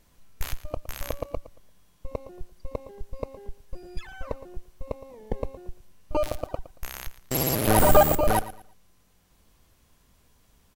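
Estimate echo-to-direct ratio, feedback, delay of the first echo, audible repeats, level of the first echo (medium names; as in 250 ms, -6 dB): -15.5 dB, 27%, 114 ms, 2, -16.0 dB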